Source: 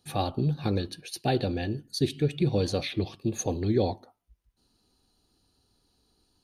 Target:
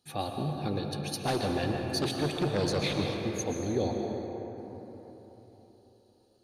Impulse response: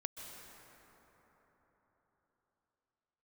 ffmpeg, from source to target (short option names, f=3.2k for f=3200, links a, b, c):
-filter_complex "[0:a]asplit=3[a][b][c];[a]afade=t=out:st=0.92:d=0.02[d];[b]aeval=exprs='0.224*(cos(1*acos(clip(val(0)/0.224,-1,1)))-cos(1*PI/2))+0.0501*(cos(3*acos(clip(val(0)/0.224,-1,1)))-cos(3*PI/2))+0.0708*(cos(5*acos(clip(val(0)/0.224,-1,1)))-cos(5*PI/2))':c=same,afade=t=in:st=0.92:d=0.02,afade=t=out:st=3.17:d=0.02[e];[c]afade=t=in:st=3.17:d=0.02[f];[d][e][f]amix=inputs=3:normalize=0,lowshelf=f=100:g=-9[g];[1:a]atrim=start_sample=2205,asetrate=48510,aresample=44100[h];[g][h]afir=irnorm=-1:irlink=0"